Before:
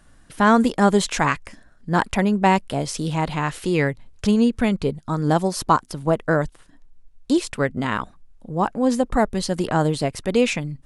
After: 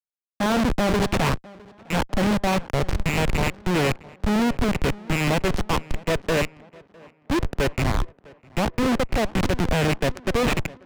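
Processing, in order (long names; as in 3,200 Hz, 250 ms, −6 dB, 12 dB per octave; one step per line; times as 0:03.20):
loose part that buzzes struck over −26 dBFS, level −9 dBFS
dynamic equaliser 560 Hz, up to +6 dB, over −36 dBFS, Q 4.5
soft clipping −9 dBFS, distortion −17 dB
hum removal 201.2 Hz, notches 3
comparator with hysteresis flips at −20.5 dBFS
high-shelf EQ 8,500 Hz −11.5 dB
tape delay 656 ms, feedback 65%, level −17 dB, low-pass 2,600 Hz
multiband upward and downward expander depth 40%
level +2 dB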